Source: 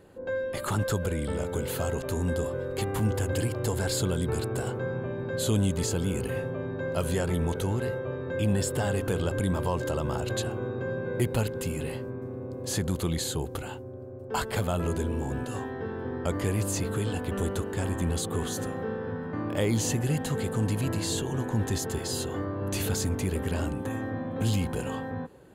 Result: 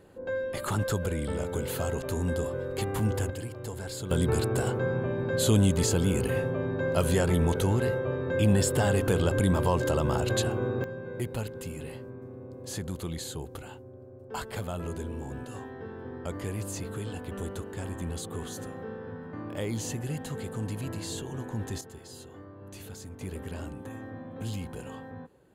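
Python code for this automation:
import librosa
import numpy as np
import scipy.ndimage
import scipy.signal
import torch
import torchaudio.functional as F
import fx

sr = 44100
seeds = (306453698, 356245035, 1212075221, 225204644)

y = fx.gain(x, sr, db=fx.steps((0.0, -1.0), (3.3, -9.0), (4.11, 3.0), (10.84, -6.5), (21.81, -15.0), (23.21, -8.5)))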